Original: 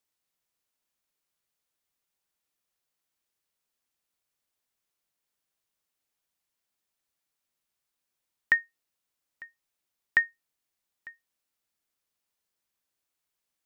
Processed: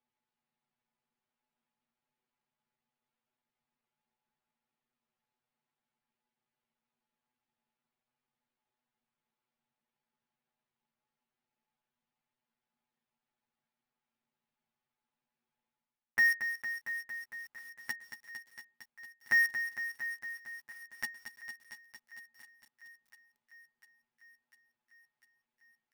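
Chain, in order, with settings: low-pass 2.6 kHz 12 dB/octave; reverse; compression 6:1, threshold -32 dBFS, peak gain reduction 14 dB; reverse; small resonant body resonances 210/840 Hz, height 12 dB, ringing for 60 ms; granular stretch 1.9×, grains 34 ms; in parallel at -6 dB: companded quantiser 2-bit; on the sum: doubling 13 ms -14 dB; thinning echo 699 ms, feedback 74%, high-pass 560 Hz, level -17 dB; bit-crushed delay 228 ms, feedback 80%, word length 9-bit, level -9.5 dB

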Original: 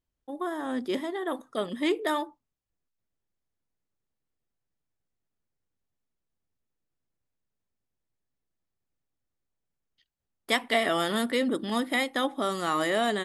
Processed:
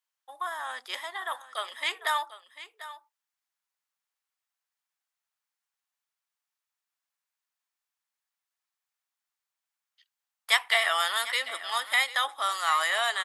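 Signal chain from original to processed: high-pass 890 Hz 24 dB/octave; delay 745 ms -15 dB; trim +4.5 dB

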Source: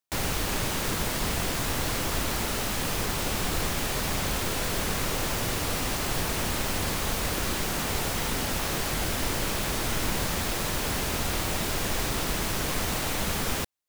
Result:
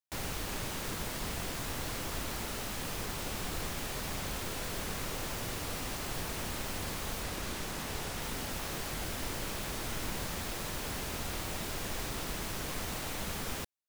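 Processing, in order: 7.23–8.22 s: loudspeaker Doppler distortion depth 0.41 ms; trim -9 dB

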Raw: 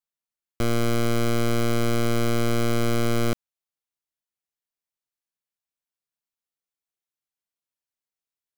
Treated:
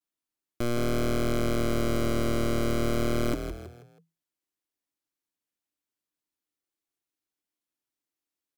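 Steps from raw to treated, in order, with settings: peaking EQ 300 Hz +14 dB 0.43 oct; saturation -24.5 dBFS, distortion -11 dB; vibrato 0.33 Hz 27 cents; frequency-shifting echo 161 ms, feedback 38%, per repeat +41 Hz, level -8 dB

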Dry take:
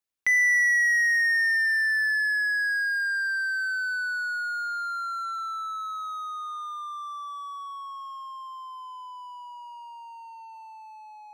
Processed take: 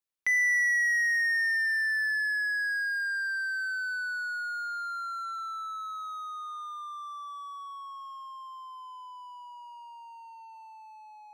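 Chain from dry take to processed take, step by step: hum notches 50/100/150/200/250 Hz; trim -4 dB

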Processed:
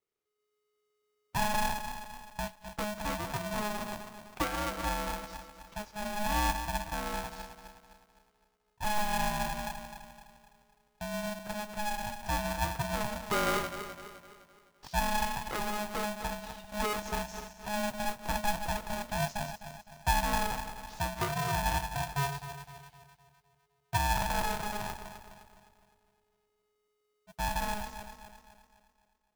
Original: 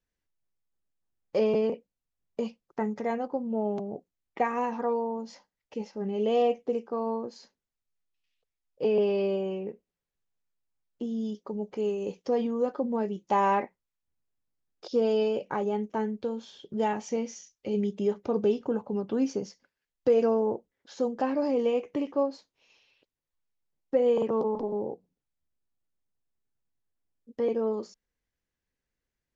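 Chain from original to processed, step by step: backward echo that repeats 128 ms, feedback 67%, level -9 dB; modulation noise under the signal 16 dB; polarity switched at an audio rate 420 Hz; trim -5.5 dB

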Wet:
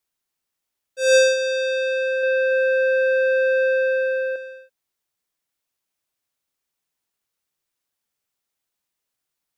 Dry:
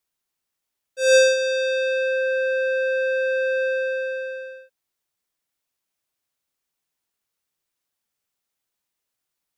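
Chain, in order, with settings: 1.95–4.36 s: bit-crushed delay 281 ms, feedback 35%, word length 10-bit, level -8 dB

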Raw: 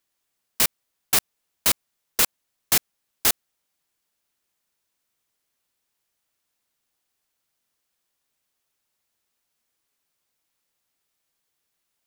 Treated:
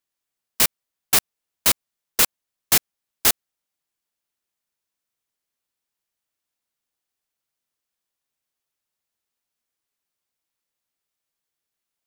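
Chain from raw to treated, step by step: upward expansion 1.5:1, over -36 dBFS; trim +3 dB

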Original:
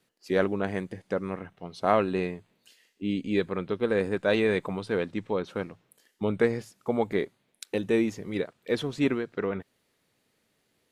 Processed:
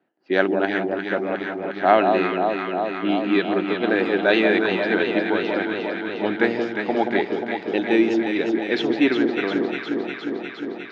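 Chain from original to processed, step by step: level-controlled noise filter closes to 1.1 kHz, open at -22 dBFS; cabinet simulation 310–5200 Hz, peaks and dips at 320 Hz +6 dB, 480 Hz -9 dB, 740 Hz +4 dB, 1.1 kHz -7 dB, 1.6 kHz +4 dB, 2.9 kHz +3 dB; echo whose repeats swap between lows and highs 178 ms, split 1.1 kHz, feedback 87%, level -4 dB; trim +7.5 dB

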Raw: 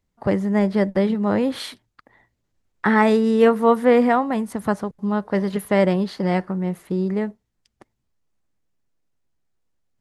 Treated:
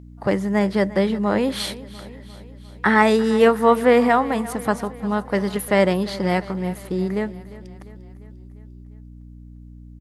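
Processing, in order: hum 60 Hz, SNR 17 dB; tilt EQ +1.5 dB/octave; feedback delay 349 ms, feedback 58%, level -18 dB; trim +2 dB

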